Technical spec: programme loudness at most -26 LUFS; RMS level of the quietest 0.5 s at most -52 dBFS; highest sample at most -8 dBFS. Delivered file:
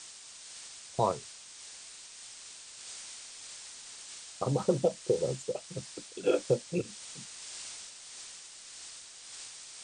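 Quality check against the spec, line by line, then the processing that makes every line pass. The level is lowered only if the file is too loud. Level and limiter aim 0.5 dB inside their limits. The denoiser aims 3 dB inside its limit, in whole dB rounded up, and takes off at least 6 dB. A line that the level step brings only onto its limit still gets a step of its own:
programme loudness -36.5 LUFS: pass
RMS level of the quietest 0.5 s -49 dBFS: fail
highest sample -14.5 dBFS: pass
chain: noise reduction 6 dB, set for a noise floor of -49 dBFS

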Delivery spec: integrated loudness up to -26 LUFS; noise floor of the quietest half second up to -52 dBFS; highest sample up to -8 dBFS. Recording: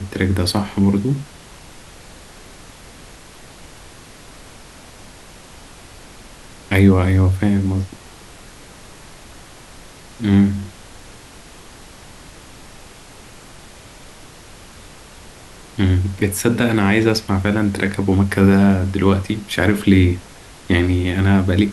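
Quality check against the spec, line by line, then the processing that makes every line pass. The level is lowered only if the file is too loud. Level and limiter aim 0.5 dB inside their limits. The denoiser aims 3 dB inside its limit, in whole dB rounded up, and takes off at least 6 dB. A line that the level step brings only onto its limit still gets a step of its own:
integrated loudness -17.0 LUFS: fail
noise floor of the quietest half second -41 dBFS: fail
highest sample -2.0 dBFS: fail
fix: noise reduction 6 dB, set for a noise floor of -41 dBFS; trim -9.5 dB

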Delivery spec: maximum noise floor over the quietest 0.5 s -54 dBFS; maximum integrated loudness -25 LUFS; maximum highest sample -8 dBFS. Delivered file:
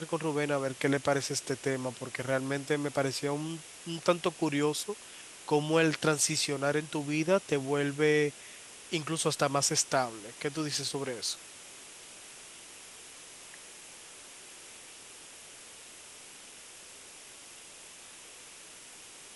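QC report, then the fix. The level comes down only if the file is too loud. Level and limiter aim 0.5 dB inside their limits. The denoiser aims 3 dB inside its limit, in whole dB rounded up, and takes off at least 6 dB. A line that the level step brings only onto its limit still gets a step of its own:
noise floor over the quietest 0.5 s -50 dBFS: fail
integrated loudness -30.5 LUFS: pass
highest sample -11.0 dBFS: pass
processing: noise reduction 7 dB, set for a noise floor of -50 dBFS

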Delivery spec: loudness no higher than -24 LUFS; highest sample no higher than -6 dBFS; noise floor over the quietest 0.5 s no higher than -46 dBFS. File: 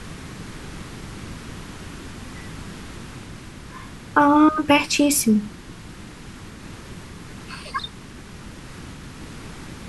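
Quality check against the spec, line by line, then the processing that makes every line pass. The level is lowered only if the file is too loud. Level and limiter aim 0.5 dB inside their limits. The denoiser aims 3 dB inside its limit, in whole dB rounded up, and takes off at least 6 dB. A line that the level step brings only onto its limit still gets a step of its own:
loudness -18.5 LUFS: fail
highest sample -4.0 dBFS: fail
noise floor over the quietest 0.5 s -40 dBFS: fail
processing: noise reduction 6 dB, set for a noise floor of -40 dBFS; trim -6 dB

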